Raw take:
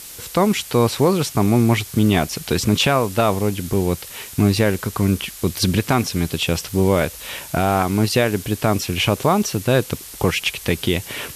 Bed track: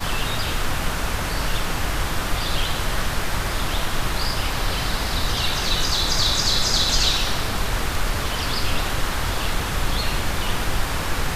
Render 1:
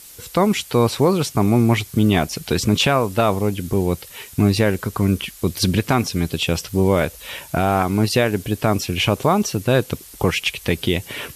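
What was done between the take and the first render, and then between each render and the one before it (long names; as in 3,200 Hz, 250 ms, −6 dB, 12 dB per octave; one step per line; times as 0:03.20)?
broadband denoise 7 dB, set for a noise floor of −37 dBFS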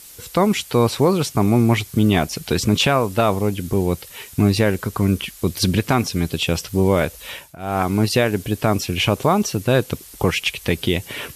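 0:07.30–0:07.84: duck −21.5 dB, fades 0.26 s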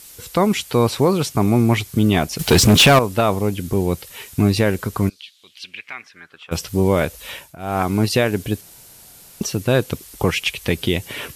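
0:02.39–0:02.99: leveller curve on the samples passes 3
0:05.08–0:06.51: resonant band-pass 4,700 Hz → 1,200 Hz, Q 4.7
0:08.61–0:09.41: fill with room tone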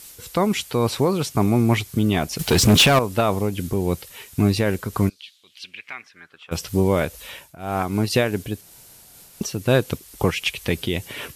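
amplitude modulation by smooth noise, depth 50%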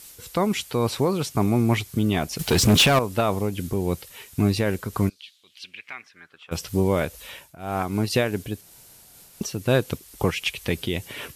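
level −2.5 dB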